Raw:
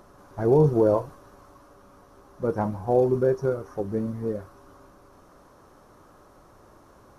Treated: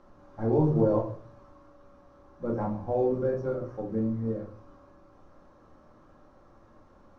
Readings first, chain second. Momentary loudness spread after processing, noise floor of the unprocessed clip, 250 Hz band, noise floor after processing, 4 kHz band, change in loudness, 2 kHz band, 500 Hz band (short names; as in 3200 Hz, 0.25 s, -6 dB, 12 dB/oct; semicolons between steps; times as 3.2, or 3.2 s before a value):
14 LU, -54 dBFS, -2.0 dB, -57 dBFS, n/a, -4.5 dB, -7.0 dB, -5.5 dB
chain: air absorption 120 m; shoebox room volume 320 m³, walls furnished, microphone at 2.2 m; gain -8.5 dB